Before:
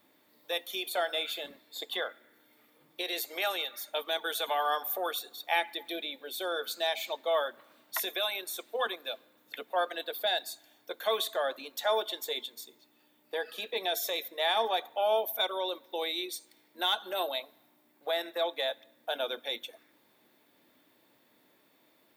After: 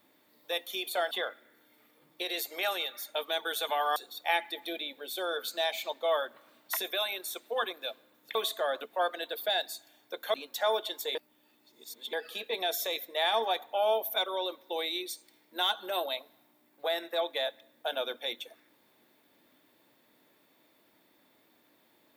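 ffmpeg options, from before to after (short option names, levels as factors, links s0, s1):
-filter_complex "[0:a]asplit=8[s0][s1][s2][s3][s4][s5][s6][s7];[s0]atrim=end=1.112[s8];[s1]atrim=start=1.898:end=4.752[s9];[s2]atrim=start=5.188:end=9.582[s10];[s3]atrim=start=11.108:end=11.572[s11];[s4]atrim=start=9.578:end=11.112[s12];[s5]atrim=start=11.568:end=12.382[s13];[s6]atrim=start=12.378:end=13.362,asetpts=PTS-STARTPTS,areverse[s14];[s7]atrim=start=13.358[s15];[s8][s9]acrossfade=d=0.004:c1=hsin:c2=hsin[s16];[s16][s10]acrossfade=d=0.004:c1=hsin:c2=hsin[s17];[s17][s11]acrossfade=d=0.004:c1=hsin:c2=hsin[s18];[s18][s12]acrossfade=d=0.004:c1=hsin:c2=hsin[s19];[s19][s13]acrossfade=d=0.004:c1=hsin:c2=hsin[s20];[s20][s14]acrossfade=d=0.004:c1=hsin:c2=hsin[s21];[s21][s15]acrossfade=d=0.004:c1=hsin:c2=hsin"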